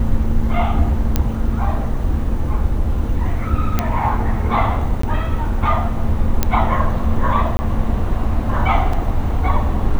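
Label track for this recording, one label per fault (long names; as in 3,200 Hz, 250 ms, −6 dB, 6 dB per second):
1.160000	1.160000	click −2 dBFS
3.790000	3.790000	click −3 dBFS
5.020000	5.030000	drop-out 14 ms
6.430000	6.430000	click −1 dBFS
7.570000	7.590000	drop-out 20 ms
8.930000	8.930000	drop-out 3.8 ms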